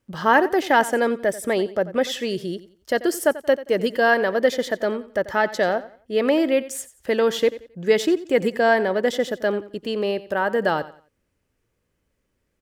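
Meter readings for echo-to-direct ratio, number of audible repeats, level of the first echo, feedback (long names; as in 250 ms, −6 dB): −16.0 dB, 2, −16.5 dB, 30%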